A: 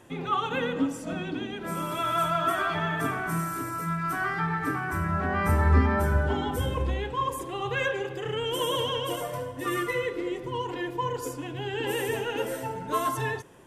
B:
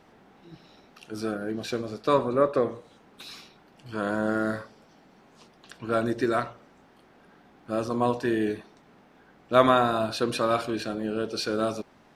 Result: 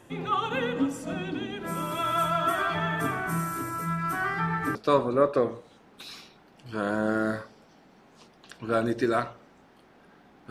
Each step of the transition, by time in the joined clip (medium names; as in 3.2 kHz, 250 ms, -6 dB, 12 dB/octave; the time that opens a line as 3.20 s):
A
4.75 s: go over to B from 1.95 s